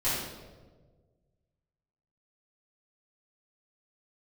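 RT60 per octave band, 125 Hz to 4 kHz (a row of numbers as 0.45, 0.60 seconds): 2.2, 1.7, 1.7, 1.2, 0.90, 0.85 seconds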